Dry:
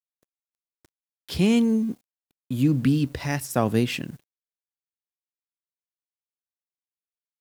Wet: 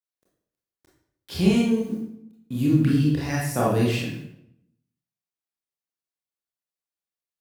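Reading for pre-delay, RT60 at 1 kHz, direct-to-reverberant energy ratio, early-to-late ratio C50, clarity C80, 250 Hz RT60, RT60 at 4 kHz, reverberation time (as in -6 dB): 24 ms, 0.75 s, -5.0 dB, 1.5 dB, 6.0 dB, 0.90 s, 0.55 s, 0.75 s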